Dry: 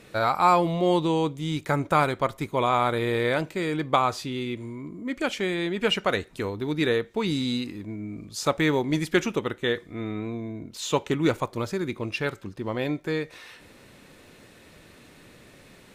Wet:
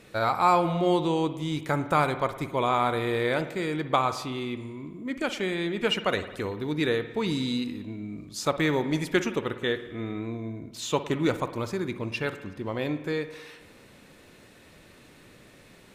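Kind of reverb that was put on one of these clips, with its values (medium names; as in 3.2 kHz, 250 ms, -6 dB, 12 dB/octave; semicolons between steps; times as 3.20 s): spring tank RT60 1.2 s, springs 53 ms, chirp 50 ms, DRR 11 dB; trim -2 dB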